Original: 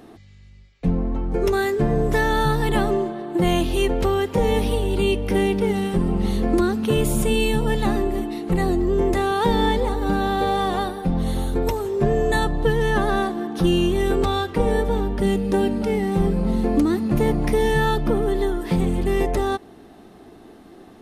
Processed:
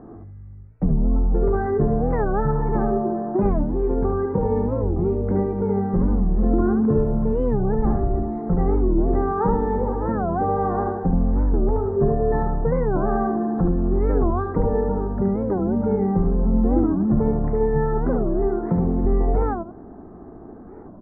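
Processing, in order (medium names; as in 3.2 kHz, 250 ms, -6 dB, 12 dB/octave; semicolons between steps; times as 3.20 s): 7.75–8.23 s: octave divider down 2 oct, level -2 dB; inverse Chebyshev low-pass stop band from 2.7 kHz, stop band 40 dB; bass shelf 190 Hz +7.5 dB; 18.40–19.05 s: high-pass 60 Hz; compression 2:1, threshold -22 dBFS, peak gain reduction 7.5 dB; 3.64–4.85 s: comb of notches 640 Hz; feedback delay 73 ms, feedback 21%, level -4 dB; warped record 45 rpm, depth 250 cents; trim +1 dB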